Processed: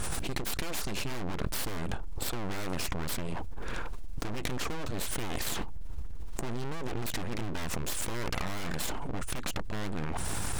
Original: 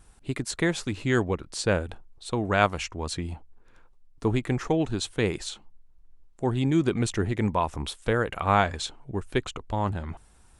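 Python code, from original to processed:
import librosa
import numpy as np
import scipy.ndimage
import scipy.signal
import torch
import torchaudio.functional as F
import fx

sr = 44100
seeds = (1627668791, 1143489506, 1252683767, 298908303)

y = fx.tube_stage(x, sr, drive_db=29.0, bias=0.7)
y = np.abs(y)
y = fx.env_flatten(y, sr, amount_pct=100)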